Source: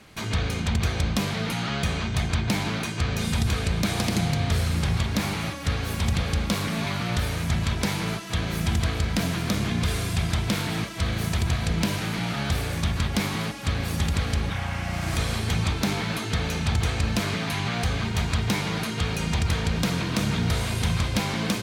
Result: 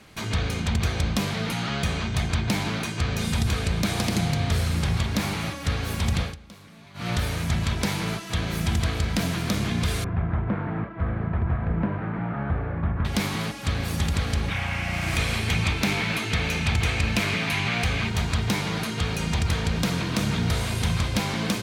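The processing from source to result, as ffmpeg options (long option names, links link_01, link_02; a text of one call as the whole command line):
ffmpeg -i in.wav -filter_complex "[0:a]asettb=1/sr,asplit=3[link_01][link_02][link_03];[link_01]atrim=end=10.044[link_04];[link_02]atrim=start=10.04:end=13.05,asetpts=PTS-STARTPTS,afade=type=in:duration=0.004:curve=qsin,afade=type=out:start_time=3.006:duration=0.004:curve=qsin,lowpass=frequency=1600:width=0.5412,lowpass=frequency=1600:width=1.3066[link_05];[link_03]atrim=start=13.046[link_06];[link_04][link_05]acrossfade=duration=0.004:curve1=hsin:curve2=qsin[link_07];[link_07][link_06]acrossfade=duration=0.004:curve1=qsin:curve2=hsin,asettb=1/sr,asplit=3[link_08][link_09][link_10];[link_08]atrim=end=14.484[link_11];[link_09]atrim=start=14.48:end=18.1,asetpts=PTS-STARTPTS,afade=type=in:duration=0.004:curve=qsin,afade=type=out:start_time=3.616:duration=0.004:curve=qsin,equalizer=frequency=2400:width=2.1:gain=8[link_12];[link_10]atrim=start=18.096[link_13];[link_11][link_12]acrossfade=duration=0.004:curve1=hsin:curve2=qsin[link_14];[link_14][link_13]acrossfade=duration=0.004:curve1=qsin:curve2=hsin,asplit=3[link_15][link_16][link_17];[link_15]atrim=end=6.36,asetpts=PTS-STARTPTS,afade=type=out:start_time=6.22:duration=0.14:silence=0.0891251[link_18];[link_16]atrim=start=6.36:end=6.94,asetpts=PTS-STARTPTS,volume=-21dB[link_19];[link_17]atrim=start=6.94,asetpts=PTS-STARTPTS,afade=type=in:duration=0.14:silence=0.0891251[link_20];[link_18][link_19][link_20]concat=n=3:v=0:a=1" out.wav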